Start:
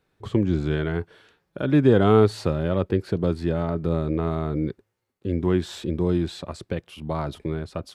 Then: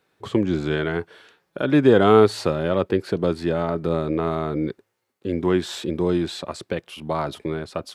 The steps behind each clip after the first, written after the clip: high-pass 340 Hz 6 dB/octave; trim +5.5 dB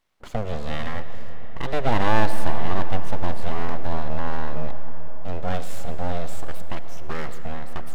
full-wave rectifier; on a send at -9 dB: reverberation RT60 5.3 s, pre-delay 35 ms; on the sum: trim -4.5 dB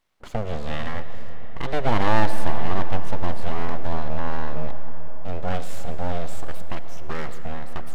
loudspeaker Doppler distortion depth 0.23 ms

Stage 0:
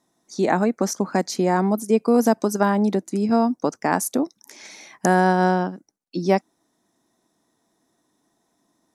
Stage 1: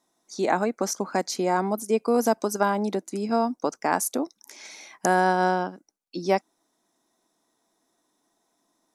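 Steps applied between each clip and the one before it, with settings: peaking EQ 99 Hz -12 dB 2.6 oct; band-stop 1.8 kHz, Q 14; trim -1 dB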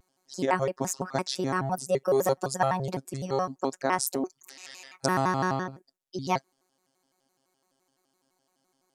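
robot voice 159 Hz; vibrato with a chosen wave square 5.9 Hz, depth 250 cents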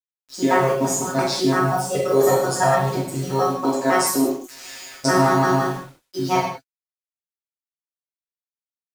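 word length cut 8-bit, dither none; reverberation, pre-delay 3 ms, DRR -8 dB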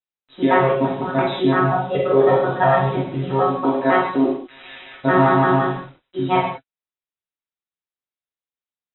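brick-wall FIR low-pass 4 kHz; trim +2 dB

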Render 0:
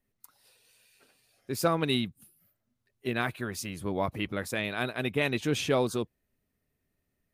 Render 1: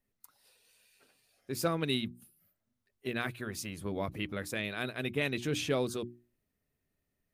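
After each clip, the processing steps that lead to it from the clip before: dynamic bell 880 Hz, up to -6 dB, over -43 dBFS, Q 1.4; hum notches 60/120/180/240/300/360 Hz; trim -3 dB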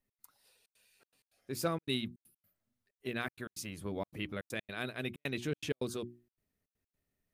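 trance gate "x.xxxxx.xxx." 160 bpm -60 dB; trim -2.5 dB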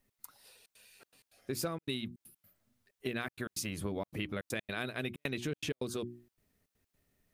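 compression 5:1, threshold -43 dBFS, peak gain reduction 14 dB; trim +9 dB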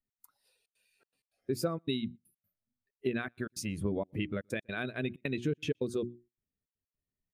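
echo from a far wall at 21 m, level -26 dB; spectral contrast expander 1.5:1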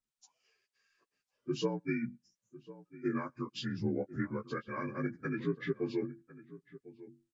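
frequency axis rescaled in octaves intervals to 82%; echo from a far wall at 180 m, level -17 dB

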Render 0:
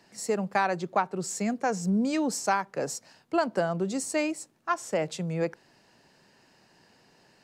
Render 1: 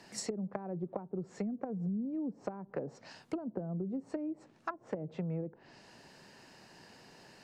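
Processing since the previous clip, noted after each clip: low-pass that closes with the level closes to 300 Hz, closed at -25 dBFS; compression 5:1, threshold -39 dBFS, peak gain reduction 13.5 dB; trim +4 dB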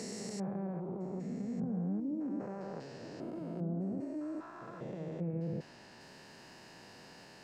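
spectrogram pixelated in time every 400 ms; reverse echo 194 ms -8.5 dB; trim +3.5 dB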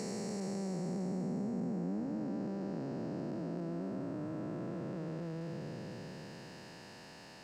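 spectral blur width 1490 ms; trim +3.5 dB

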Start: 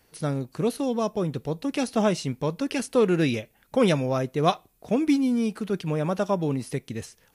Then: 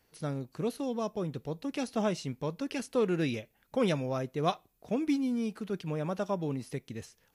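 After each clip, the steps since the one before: peaking EQ 9.2 kHz -5 dB 0.31 oct; trim -7.5 dB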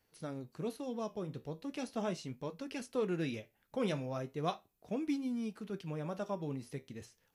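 flange 0.38 Hz, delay 9 ms, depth 5.9 ms, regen -67%; trim -2 dB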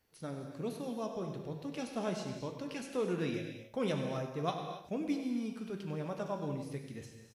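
delay 98 ms -12 dB; gated-style reverb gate 300 ms flat, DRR 4.5 dB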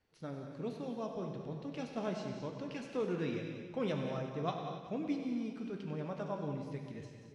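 distance through air 98 m; two-band feedback delay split 430 Hz, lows 285 ms, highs 186 ms, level -11 dB; trim -1.5 dB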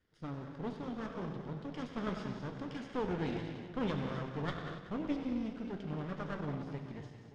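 comb filter that takes the minimum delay 0.59 ms; distance through air 82 m; trim +1.5 dB

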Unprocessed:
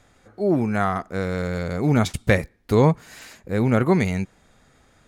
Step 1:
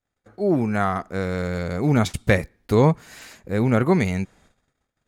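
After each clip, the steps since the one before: gate -53 dBFS, range -32 dB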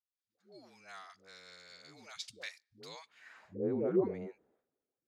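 band-pass sweep 4.7 kHz -> 400 Hz, 2.87–3.53 s; phase dispersion highs, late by 142 ms, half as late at 400 Hz; trim -7 dB

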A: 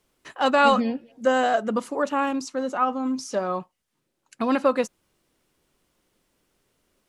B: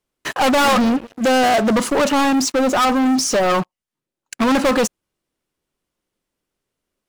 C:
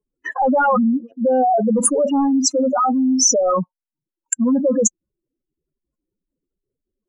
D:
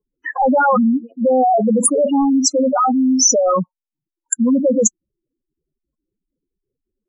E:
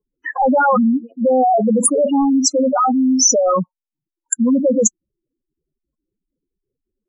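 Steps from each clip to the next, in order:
hard clipper -12.5 dBFS, distortion -19 dB; waveshaping leveller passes 5
spectral contrast enhancement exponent 3.8; resonant high shelf 5.6 kHz +10 dB, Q 3
spectral gate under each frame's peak -20 dB strong; trim +2 dB
short-mantissa float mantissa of 8-bit

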